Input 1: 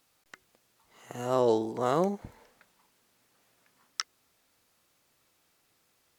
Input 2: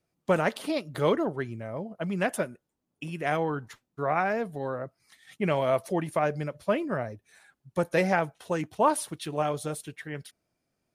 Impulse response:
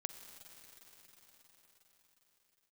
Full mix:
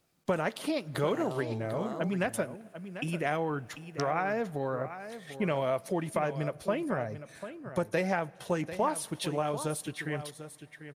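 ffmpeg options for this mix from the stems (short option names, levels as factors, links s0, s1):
-filter_complex "[0:a]acompressor=threshold=0.0398:ratio=6,volume=0.422[s0];[1:a]acompressor=threshold=0.02:ratio=2.5,volume=1.33,asplit=3[s1][s2][s3];[s2]volume=0.224[s4];[s3]volume=0.299[s5];[2:a]atrim=start_sample=2205[s6];[s4][s6]afir=irnorm=-1:irlink=0[s7];[s5]aecho=0:1:744:1[s8];[s0][s1][s7][s8]amix=inputs=4:normalize=0"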